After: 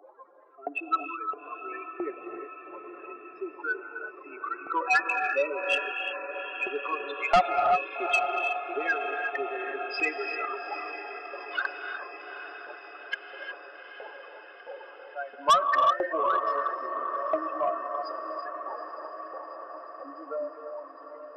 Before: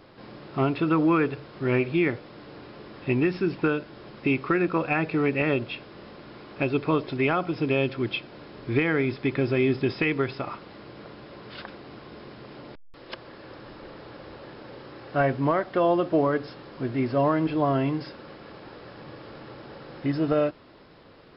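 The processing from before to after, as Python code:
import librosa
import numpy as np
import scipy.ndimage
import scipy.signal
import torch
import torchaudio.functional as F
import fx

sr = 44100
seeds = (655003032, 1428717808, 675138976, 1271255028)

p1 = fx.spec_expand(x, sr, power=3.5)
p2 = scipy.signal.sosfilt(scipy.signal.butter(4, 360.0, 'highpass', fs=sr, output='sos'), p1)
p3 = fx.filter_lfo_highpass(p2, sr, shape='saw_up', hz=1.5, low_hz=740.0, high_hz=2800.0, q=5.8)
p4 = p3 + fx.echo_diffused(p3, sr, ms=844, feedback_pct=63, wet_db=-10.5, dry=0)
p5 = fx.rev_gated(p4, sr, seeds[0], gate_ms=390, shape='rising', drr_db=5.5)
p6 = 10.0 ** (-22.0 / 20.0) * np.tanh(p5 / 10.0 ** (-22.0 / 20.0))
y = p6 * 10.0 ** (7.0 / 20.0)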